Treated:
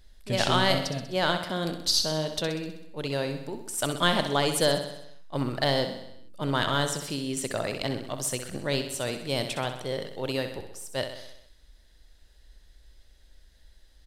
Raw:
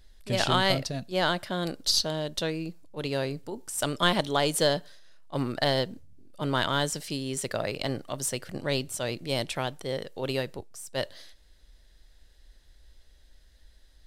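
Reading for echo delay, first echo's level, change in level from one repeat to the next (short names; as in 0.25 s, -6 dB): 64 ms, -9.0 dB, -4.5 dB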